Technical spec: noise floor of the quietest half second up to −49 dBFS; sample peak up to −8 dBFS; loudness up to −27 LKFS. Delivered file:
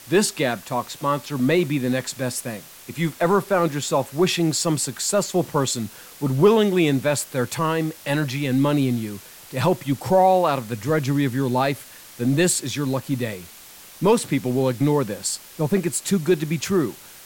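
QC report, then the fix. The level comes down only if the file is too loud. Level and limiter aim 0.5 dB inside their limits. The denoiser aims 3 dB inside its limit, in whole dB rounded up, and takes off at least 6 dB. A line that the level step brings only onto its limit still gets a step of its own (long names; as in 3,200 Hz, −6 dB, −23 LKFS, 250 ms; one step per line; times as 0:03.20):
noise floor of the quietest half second −44 dBFS: out of spec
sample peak −6.0 dBFS: out of spec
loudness −22.0 LKFS: out of spec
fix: level −5.5 dB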